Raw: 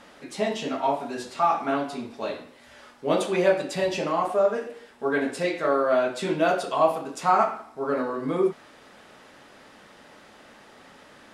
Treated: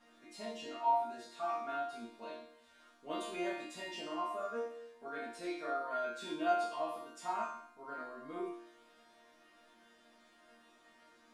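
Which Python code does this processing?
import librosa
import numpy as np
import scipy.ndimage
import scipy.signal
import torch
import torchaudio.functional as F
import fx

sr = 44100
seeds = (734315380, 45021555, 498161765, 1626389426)

y = fx.resonator_bank(x, sr, root=58, chord='sus4', decay_s=0.59)
y = F.gain(torch.from_numpy(y), 7.0).numpy()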